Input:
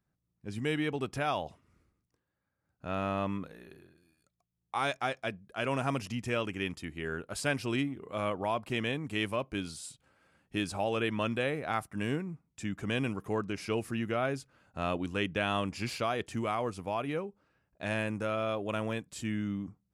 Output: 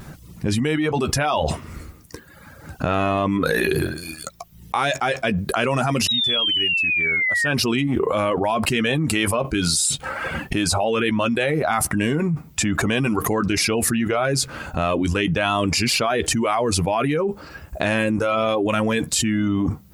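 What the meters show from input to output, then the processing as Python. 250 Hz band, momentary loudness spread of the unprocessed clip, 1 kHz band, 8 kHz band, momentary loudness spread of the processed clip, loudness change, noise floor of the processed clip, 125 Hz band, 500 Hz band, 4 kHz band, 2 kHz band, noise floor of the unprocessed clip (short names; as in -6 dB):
+12.5 dB, 8 LU, +11.5 dB, +22.5 dB, 8 LU, +13.0 dB, -46 dBFS, +12.5 dB, +12.0 dB, +18.0 dB, +14.0 dB, -83 dBFS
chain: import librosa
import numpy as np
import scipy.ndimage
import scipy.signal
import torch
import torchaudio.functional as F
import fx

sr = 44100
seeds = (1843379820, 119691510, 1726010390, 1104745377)

y = fx.spec_paint(x, sr, seeds[0], shape='fall', start_s=6.08, length_s=1.4, low_hz=1800.0, high_hz=3900.0, level_db=-25.0)
y = fx.doubler(y, sr, ms=13.0, db=-9)
y = fx.vibrato(y, sr, rate_hz=0.46, depth_cents=13.0)
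y = fx.dereverb_blind(y, sr, rt60_s=0.9)
y = fx.env_flatten(y, sr, amount_pct=100)
y = F.gain(torch.from_numpy(y), 2.5).numpy()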